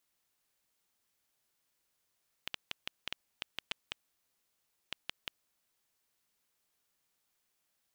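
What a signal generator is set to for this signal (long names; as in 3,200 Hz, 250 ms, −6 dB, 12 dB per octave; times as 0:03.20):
Geiger counter clicks 4 per second −18 dBFS 3.44 s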